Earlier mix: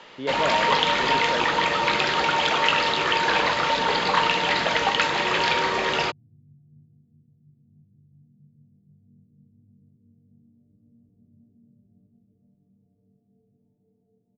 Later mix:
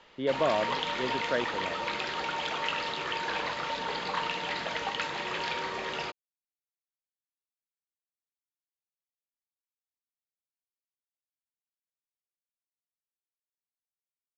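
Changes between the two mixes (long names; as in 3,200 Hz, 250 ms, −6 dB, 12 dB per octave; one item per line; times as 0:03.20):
first sound −11.0 dB
second sound: muted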